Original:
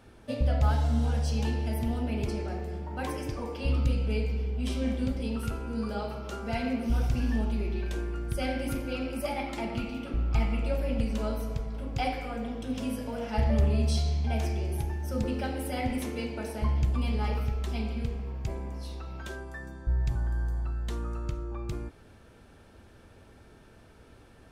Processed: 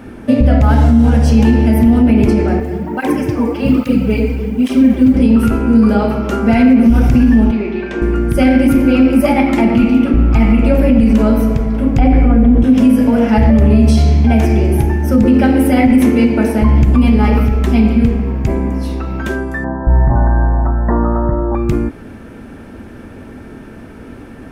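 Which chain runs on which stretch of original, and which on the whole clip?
2.6–5.14 HPF 82 Hz + short-mantissa float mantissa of 4-bit + tape flanging out of phase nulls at 1.2 Hz, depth 6 ms
7.51–8.02 HPF 510 Hz 6 dB/oct + air absorption 120 m
11.98–12.64 RIAA curve playback + de-hum 73.56 Hz, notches 3
19.64–21.55 brick-wall FIR low-pass 2000 Hz + band shelf 770 Hz +11.5 dB 1.1 oct
whole clip: graphic EQ 250/2000/4000/8000 Hz +11/+4/-7/-4 dB; maximiser +18 dB; gain -1 dB

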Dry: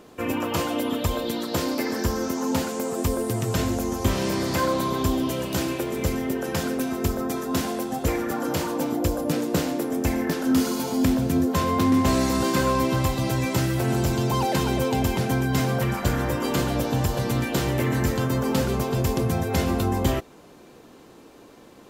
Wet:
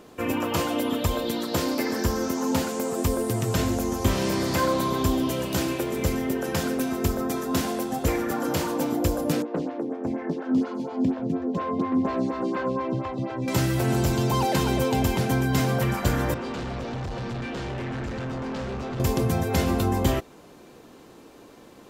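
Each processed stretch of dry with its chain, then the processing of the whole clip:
9.42–13.48 HPF 130 Hz + tape spacing loss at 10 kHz 28 dB + photocell phaser 4.2 Hz
16.34–19 notch comb 150 Hz + hard clip -29 dBFS + air absorption 120 m
whole clip: dry

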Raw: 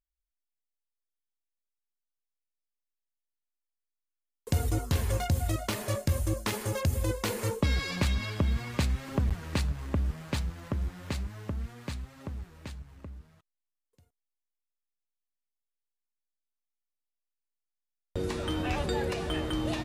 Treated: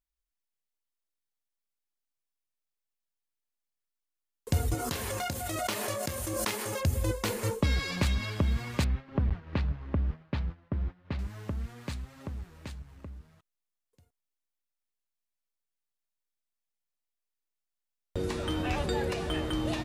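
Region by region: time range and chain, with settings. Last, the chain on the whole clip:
4.74–6.8 HPF 380 Hz 6 dB/oct + doubler 29 ms -10.5 dB + backwards sustainer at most 21 dB/s
8.84–11.19 expander -35 dBFS + air absorption 300 m
whole clip: dry

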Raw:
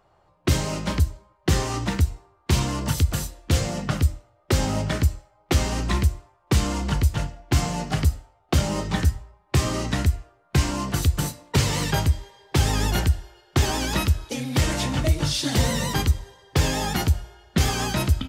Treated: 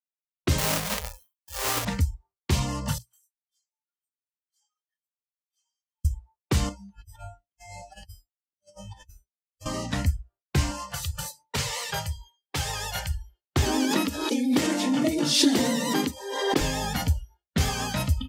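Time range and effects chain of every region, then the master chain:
0.58–1.85 half-waves squared off + tilt +2.5 dB/oct + negative-ratio compressor -24 dBFS, ratio -0.5
2.98–6.05 HPF 860 Hz 24 dB/oct + compressor 2:1, threshold -54 dBFS + detuned doubles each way 24 cents
6.69–9.66 resonator 100 Hz, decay 0.44 s, mix 90% + negative-ratio compressor -37 dBFS, ratio -0.5
10.72–13.11 low shelf 450 Hz -8 dB + notches 50/100/150 Hz
13.66–16.61 resonant high-pass 270 Hz, resonance Q 3.3 + backwards sustainer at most 44 dB/s
whole clip: notches 60/120/180 Hz; spectral noise reduction 26 dB; expander -44 dBFS; gain -3 dB

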